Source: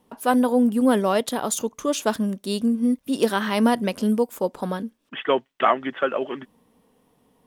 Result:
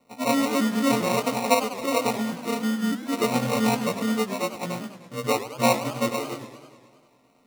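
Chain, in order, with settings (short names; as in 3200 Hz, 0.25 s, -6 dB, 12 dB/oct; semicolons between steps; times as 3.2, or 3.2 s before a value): frequency quantiser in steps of 4 st; sample-and-hold 27×; warbling echo 0.102 s, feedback 68%, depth 215 cents, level -13 dB; gain -4.5 dB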